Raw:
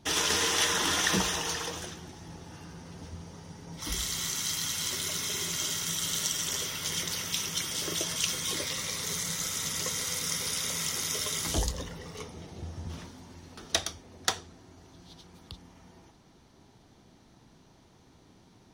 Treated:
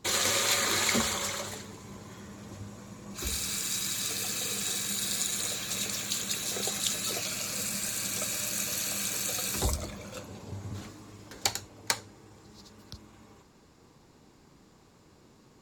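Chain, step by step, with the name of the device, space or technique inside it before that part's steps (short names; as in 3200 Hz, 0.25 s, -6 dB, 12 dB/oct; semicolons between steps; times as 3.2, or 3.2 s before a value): nightcore (varispeed +20%)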